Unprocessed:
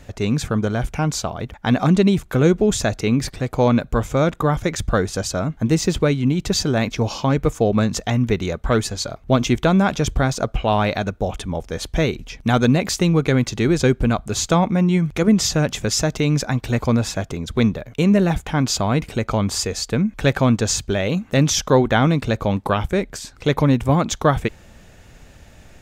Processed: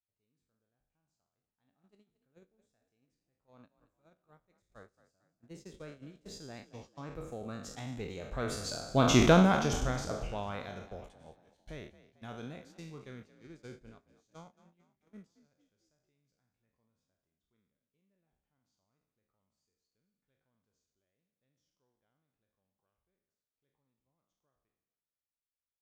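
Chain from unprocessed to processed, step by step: spectral sustain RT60 0.73 s; Doppler pass-by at 9.26 s, 13 m/s, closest 2.5 m; gate -41 dBFS, range -26 dB; frequency-shifting echo 223 ms, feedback 43%, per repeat +41 Hz, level -16.5 dB; trim -6 dB

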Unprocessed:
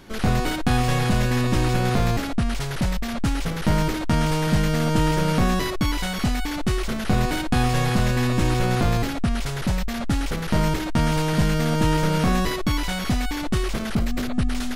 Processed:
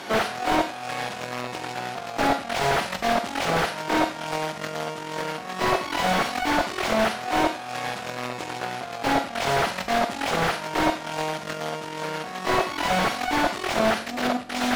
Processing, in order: peaking EQ 710 Hz +8 dB 0.5 oct; Chebyshev shaper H 4 -13 dB, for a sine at -10.5 dBFS; compressor with a negative ratio -26 dBFS, ratio -0.5; frequency weighting A; Schroeder reverb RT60 0.43 s, combs from 32 ms, DRR 10.5 dB; slew-rate limiter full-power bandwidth 67 Hz; trim +6.5 dB

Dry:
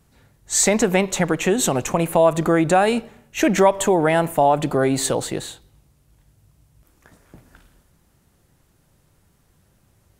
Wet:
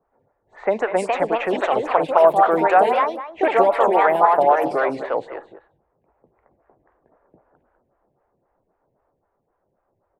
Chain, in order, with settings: ever faster or slower copies 525 ms, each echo +3 st, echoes 2; three-band isolator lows -18 dB, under 450 Hz, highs -20 dB, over 2.6 kHz; level-controlled noise filter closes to 810 Hz, open at -15.5 dBFS; echo from a far wall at 34 m, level -13 dB; lamp-driven phase shifter 3.8 Hz; trim +4.5 dB

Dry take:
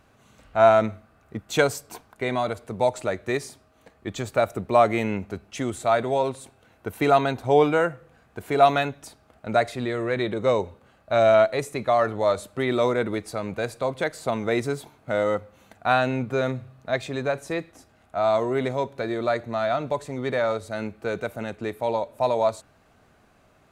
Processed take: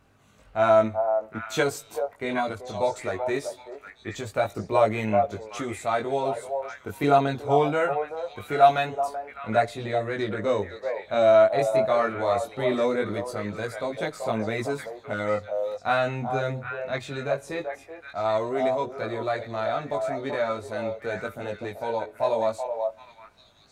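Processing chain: repeats whose band climbs or falls 383 ms, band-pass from 680 Hz, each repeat 1.4 oct, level -3.5 dB; chorus voices 2, 0.21 Hz, delay 20 ms, depth 1.8 ms

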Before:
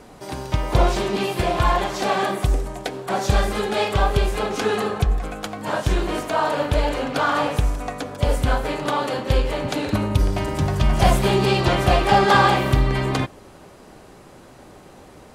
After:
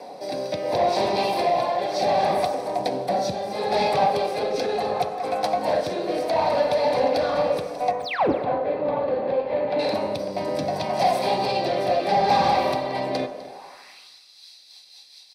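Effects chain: 2.78–3.56 s: tone controls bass +13 dB, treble +2 dB; compression 2.5:1, threshold -24 dBFS, peak gain reduction 15 dB; 8.00–8.32 s: painted sound fall 230–9800 Hz -14 dBFS; rotary cabinet horn 0.7 Hz, later 5 Hz, at 13.95 s; high-pass sweep 570 Hz -> 3.9 kHz, 13.43–14.11 s; saturation -24 dBFS, distortion -7 dB; 7.91–9.79 s: distance through air 500 m; delay 253 ms -17.5 dB; reverberation RT60 1.0 s, pre-delay 3 ms, DRR 6 dB

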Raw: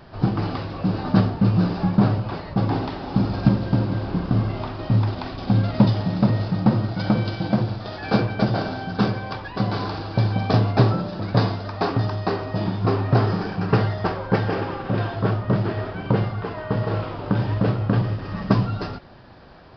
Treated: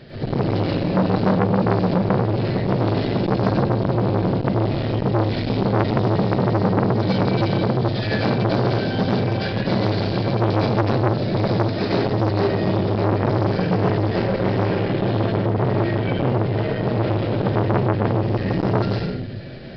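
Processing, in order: graphic EQ 125/250/500/1000/2000/4000 Hz +10/+6/+12/-10/+10/+10 dB; compression 3:1, threshold -15 dBFS, peak gain reduction 11.5 dB; reverberation RT60 0.65 s, pre-delay 90 ms, DRR -6.5 dB; transformer saturation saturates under 960 Hz; trim -5.5 dB

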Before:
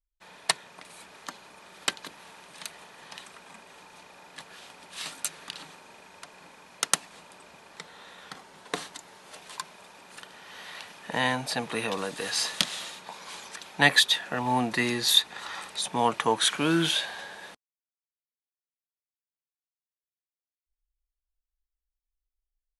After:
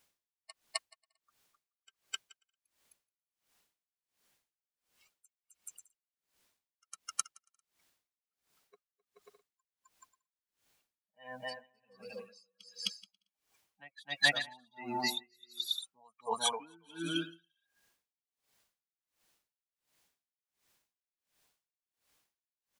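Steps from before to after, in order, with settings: expander on every frequency bin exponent 3; high-pass 250 Hz 6 dB/octave; on a send: bouncing-ball echo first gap 260 ms, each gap 0.65×, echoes 5; on the sum: word length cut 12-bit, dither triangular; treble shelf 8.4 kHz -5 dB; band-stop 1.3 kHz, Q 24; logarithmic tremolo 1.4 Hz, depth 35 dB; trim +1.5 dB

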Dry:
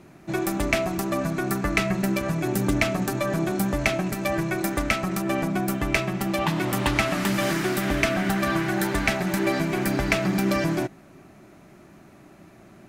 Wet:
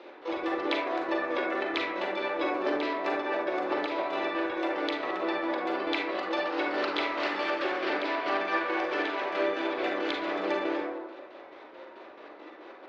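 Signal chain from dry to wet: elliptic band-pass 340–3100 Hz, stop band 40 dB; compression 12:1, threshold -32 dBFS, peak gain reduction 14.5 dB; harmony voices +7 st -1 dB; square tremolo 4.6 Hz, depth 60%, duty 50%; reverberation RT60 1.0 s, pre-delay 32 ms, DRR -2 dB; trim +1.5 dB

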